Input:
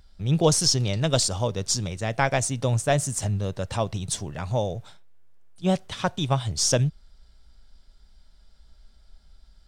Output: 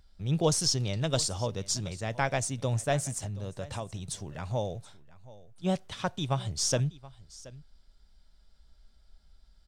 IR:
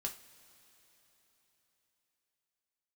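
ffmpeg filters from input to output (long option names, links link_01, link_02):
-filter_complex "[0:a]asettb=1/sr,asplit=3[link_01][link_02][link_03];[link_01]atrim=end=3.174[link_04];[link_02]atrim=start=3.17:end=4.31,asetpts=PTS-STARTPTS,afade=type=in:duration=0.004:curve=qsin,afade=type=out:start_time=1.136:duration=0.004:curve=qsin,acompressor=threshold=-27dB:ratio=6[link_05];[link_03]atrim=start=4.306[link_06];[link_04][link_05]acrossfade=duration=0.004:curve1=hsin:curve2=qsin[link_07];[link_07][link_06]acrossfade=duration=0.004:curve1=qsin:curve2=hsin,aecho=1:1:726:0.1,volume=-6dB"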